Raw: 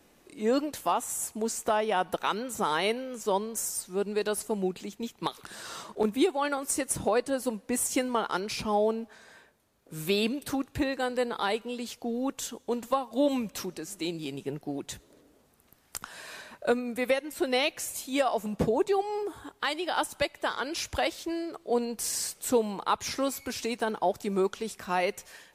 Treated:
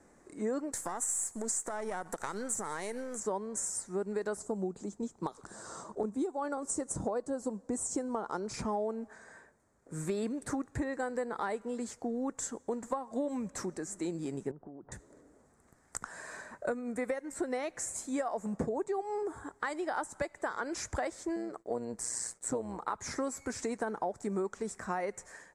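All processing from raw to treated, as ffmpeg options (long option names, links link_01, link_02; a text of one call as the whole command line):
ffmpeg -i in.wav -filter_complex "[0:a]asettb=1/sr,asplit=3[link_01][link_02][link_03];[link_01]atrim=end=0.724[link_04];[link_02]atrim=start=0.72:end=3.2,asetpts=PTS-STARTPTS,afade=type=in:duration=0.004:curve=qsin,afade=type=out:start_time=2.476:duration=0.004:curve=qsin,aeval=exprs='if(lt(val(0),0),0.447*val(0),val(0))':channel_layout=same,acompressor=threshold=-31dB:ratio=6:attack=3.2:release=140:knee=1:detection=peak,aemphasis=mode=production:type=75kf[link_05];[link_03]atrim=start=3.196[link_06];[link_04][link_05]acrossfade=duration=0.004:curve1=hsin:curve2=qsin[link_07];[link_07][link_06]acrossfade=duration=0.004:curve1=qsin:curve2=hsin,asettb=1/sr,asplit=3[link_08][link_09][link_10];[link_08]atrim=end=4.374[link_11];[link_09]atrim=start=4.37:end=8.54,asetpts=PTS-STARTPTS,afade=type=in:duration=0.004:curve=qsin,afade=type=out:start_time=4.166:duration=0.004:curve=qsin,lowpass=9200,equalizer=frequency=2000:width_type=o:width=0.96:gain=-12[link_12];[link_10]atrim=start=8.536[link_13];[link_11][link_12]acrossfade=duration=0.004:curve1=hsin:curve2=qsin[link_14];[link_14][link_13]acrossfade=duration=0.004:curve1=qsin:curve2=hsin,asettb=1/sr,asplit=3[link_15][link_16][link_17];[link_15]atrim=end=14.514[link_18];[link_16]atrim=start=14.51:end=14.92,asetpts=PTS-STARTPTS,afade=type=in:duration=0.004:curve=qsin,afade=type=out:start_time=0.406:duration=0.004:curve=qsin,lowpass=frequency=1300:width=0.5412,lowpass=frequency=1300:width=1.3066,acompressor=threshold=-45dB:ratio=6:attack=3.2:release=140:knee=1:detection=peak[link_19];[link_17]atrim=start=14.916[link_20];[link_18][link_19]acrossfade=duration=0.004:curve1=hsin:curve2=qsin[link_21];[link_21][link_20]acrossfade=duration=0.004:curve1=qsin:curve2=hsin,asettb=1/sr,asplit=3[link_22][link_23][link_24];[link_22]atrim=end=21.364[link_25];[link_23]atrim=start=21.36:end=22.95,asetpts=PTS-STARTPTS,afade=type=in:duration=0.004:curve=qsin,afade=type=out:start_time=1.586:duration=0.004:curve=qsin,tremolo=f=120:d=0.667,agate=range=-33dB:threshold=-52dB:ratio=3:release=100:detection=peak[link_26];[link_24]atrim=start=22.946[link_27];[link_25][link_26]acrossfade=duration=0.004:curve1=hsin:curve2=qsin[link_28];[link_28][link_27]acrossfade=duration=0.004:curve1=qsin:curve2=hsin,firequalizer=gain_entry='entry(1900,0);entry(2800,-19);entry(7600,3);entry(14000,-27)':delay=0.05:min_phase=1,acompressor=threshold=-31dB:ratio=5" out.wav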